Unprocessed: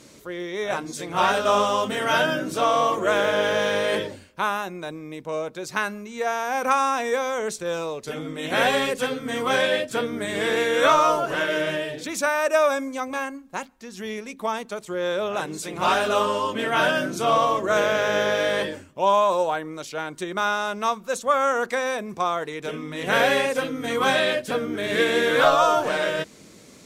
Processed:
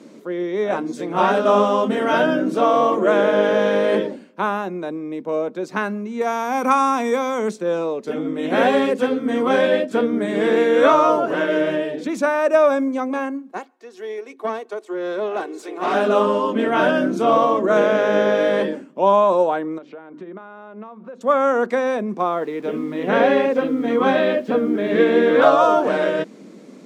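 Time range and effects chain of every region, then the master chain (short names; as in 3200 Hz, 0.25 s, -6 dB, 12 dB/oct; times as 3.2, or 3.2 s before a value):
6.21–7.51 high shelf 5900 Hz +12 dB + comb 0.9 ms, depth 35%
13.51–15.94 HPF 370 Hz 24 dB/oct + comb 2.7 ms, depth 47% + tube stage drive 18 dB, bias 0.6
19.78–21.21 LPF 2200 Hz + notches 50/100/150/200/250/300/350 Hz + compressor 5:1, threshold -40 dBFS
22.19–25.42 air absorption 110 m + notch 1500 Hz, Q 29 + requantised 8-bit, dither none
whole clip: steep high-pass 200 Hz 36 dB/oct; tilt -4 dB/oct; gain +2.5 dB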